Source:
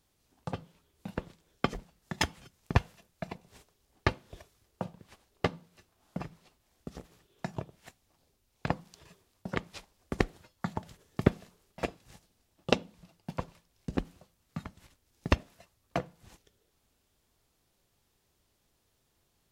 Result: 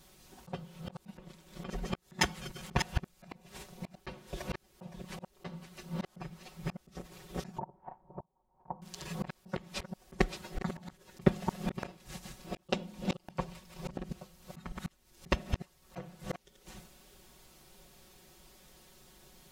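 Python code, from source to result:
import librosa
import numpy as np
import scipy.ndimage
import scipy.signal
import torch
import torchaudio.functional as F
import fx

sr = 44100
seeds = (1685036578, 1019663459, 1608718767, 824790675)

y = fx.reverse_delay(x, sr, ms=359, wet_db=-6.0)
y = fx.ladder_lowpass(y, sr, hz=960.0, resonance_pct=75, at=(7.58, 8.82))
y = y + 0.99 * np.pad(y, (int(5.4 * sr / 1000.0), 0))[:len(y)]
y = fx.auto_swell(y, sr, attack_ms=530.0)
y = y * librosa.db_to_amplitude(11.5)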